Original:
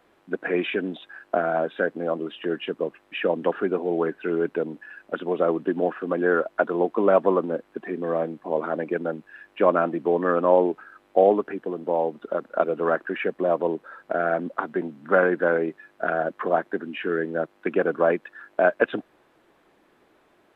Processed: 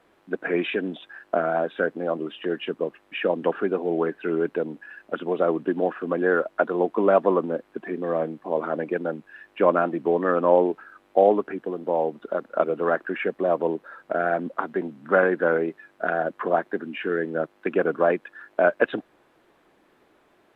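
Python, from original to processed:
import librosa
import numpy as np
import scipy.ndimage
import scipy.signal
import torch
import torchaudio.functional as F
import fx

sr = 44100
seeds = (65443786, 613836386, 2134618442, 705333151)

y = fx.wow_flutter(x, sr, seeds[0], rate_hz=2.1, depth_cents=42.0)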